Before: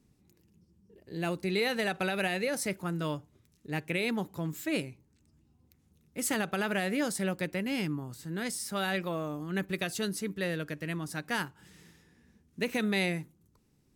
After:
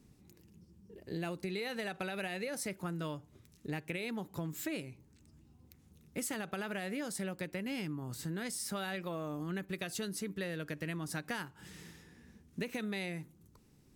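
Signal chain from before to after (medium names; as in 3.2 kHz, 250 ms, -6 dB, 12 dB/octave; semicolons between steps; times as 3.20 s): compression 10:1, threshold -40 dBFS, peak gain reduction 15 dB; trim +4.5 dB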